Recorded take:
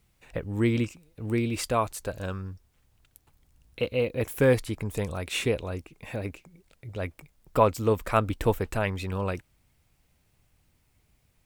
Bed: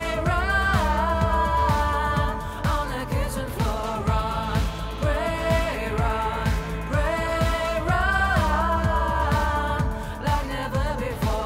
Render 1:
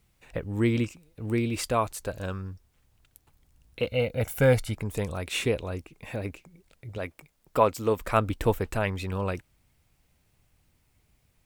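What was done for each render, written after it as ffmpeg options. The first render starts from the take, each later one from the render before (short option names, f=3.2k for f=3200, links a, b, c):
-filter_complex "[0:a]asettb=1/sr,asplit=3[a][b][c];[a]atrim=end=3.874[d];[b]atrim=start=3.87:end=4.74,asetpts=PTS-STARTPTS,afade=t=in:d=0.004:c=qsin,afade=t=out:st=0.866:d=0.004:c=qsin,aecho=1:1:1.4:0.65,atrim=end_sample=38367[e];[c]atrim=start=4.736[f];[d][e]acrossfade=d=0.004:c1=hsin:c2=qsin[g];[g][f]acrossfade=d=0.004:c1=qsin:c2=hsin,asettb=1/sr,asplit=3[h][i][j];[h]atrim=end=6.984[k];[i]atrim=start=6.98:end=7.99,asetpts=PTS-STARTPTS,afade=t=in:d=0.004:c=qsin,afade=t=out:st=1.006:d=0.004:c=qsin,lowshelf=f=130:g=-10.5[l];[j]atrim=start=7.986[m];[k][l]acrossfade=d=0.004:c1=hsin:c2=qsin[n];[n][m]acrossfade=d=0.004:c1=qsin:c2=hsin"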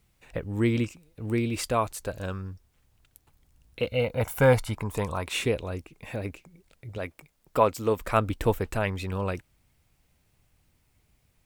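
-filter_complex "[0:a]asettb=1/sr,asplit=3[a][b][c];[a]atrim=end=4.044[d];[b]atrim=start=4.04:end=5.33,asetpts=PTS-STARTPTS,afade=t=in:d=0.004:c=qsin,afade=t=out:st=1.286:d=0.004:c=qsin,equalizer=f=1k:w=2.4:g=12.5[e];[c]atrim=start=5.326[f];[d][e]acrossfade=d=0.004:c1=hsin:c2=qsin[g];[g][f]acrossfade=d=0.004:c1=qsin:c2=hsin"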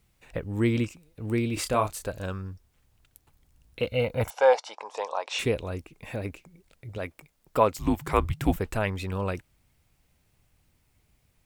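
-filter_complex "[0:a]asettb=1/sr,asplit=3[a][b][c];[a]atrim=end=1.544[d];[b]atrim=start=1.54:end=2.05,asetpts=PTS-STARTPTS,afade=t=in:d=0.004:c=qsin,afade=t=out:st=0.506:d=0.004:c=qsin,asplit=2[e][f];[f]adelay=29,volume=-6.5dB[g];[e][g]amix=inputs=2:normalize=0,atrim=end_sample=22491[h];[c]atrim=start=2.046[i];[d][h]acrossfade=d=0.004:c1=hsin:c2=qsin[j];[j][i]acrossfade=d=0.004:c1=qsin:c2=hsin,asettb=1/sr,asplit=3[k][l][m];[k]atrim=end=4.304[n];[l]atrim=start=4.3:end=5.39,asetpts=PTS-STARTPTS,afade=t=in:d=0.004:c=qsin,afade=t=out:st=1.086:d=0.004:c=qsin,highpass=f=500:w=0.5412,highpass=f=500:w=1.3066,equalizer=f=550:t=q:w=4:g=4,equalizer=f=810:t=q:w=4:g=7,equalizer=f=1.4k:t=q:w=4:g=-4,equalizer=f=2.1k:t=q:w=4:g=-6,equalizer=f=5.6k:t=q:w=4:g=6,lowpass=f=6.4k:w=0.5412,lowpass=f=6.4k:w=1.3066[o];[m]atrim=start=5.386[p];[n][o]acrossfade=d=0.004:c1=hsin:c2=qsin[q];[q][p]acrossfade=d=0.004:c1=qsin:c2=hsin,asettb=1/sr,asplit=3[r][s][t];[r]atrim=end=7.734[u];[s]atrim=start=7.73:end=8.56,asetpts=PTS-STARTPTS,afade=t=in:d=0.004:c=qsin,afade=t=out:st=0.826:d=0.004:c=qsin,afreqshift=-180[v];[t]atrim=start=8.556[w];[u][v]acrossfade=d=0.004:c1=hsin:c2=qsin[x];[x][w]acrossfade=d=0.004:c1=qsin:c2=hsin"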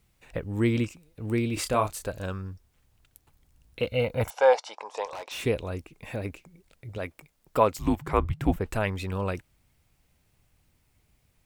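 -filter_complex "[0:a]asettb=1/sr,asplit=3[a][b][c];[a]atrim=end=5.054[d];[b]atrim=start=5.05:end=5.45,asetpts=PTS-STARTPTS,afade=t=in:d=0.004:c=qsin,afade=t=out:st=0.396:d=0.004:c=qsin,volume=34.5dB,asoftclip=hard,volume=-34.5dB[e];[c]atrim=start=5.446[f];[d][e]acrossfade=d=0.004:c1=hsin:c2=qsin[g];[g][f]acrossfade=d=0.004:c1=qsin:c2=hsin,asettb=1/sr,asplit=3[h][i][j];[h]atrim=end=7.954[k];[i]atrim=start=7.95:end=8.66,asetpts=PTS-STARTPTS,afade=t=in:d=0.004:c=qsin,afade=t=out:st=0.706:d=0.004:c=qsin,highshelf=f=2.8k:g=-9.5[l];[j]atrim=start=8.656[m];[k][l]acrossfade=d=0.004:c1=hsin:c2=qsin[n];[n][m]acrossfade=d=0.004:c1=qsin:c2=hsin"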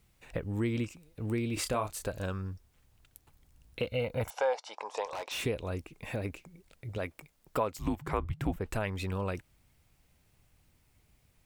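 -af "acompressor=threshold=-31dB:ratio=2.5"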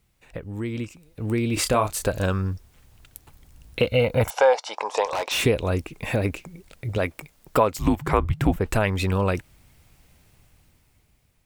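-af "dynaudnorm=f=300:g=9:m=12dB"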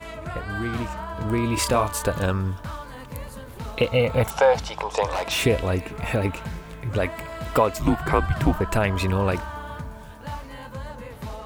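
-filter_complex "[1:a]volume=-10.5dB[a];[0:a][a]amix=inputs=2:normalize=0"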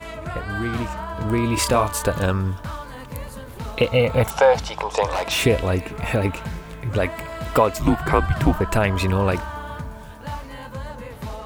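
-af "volume=2.5dB"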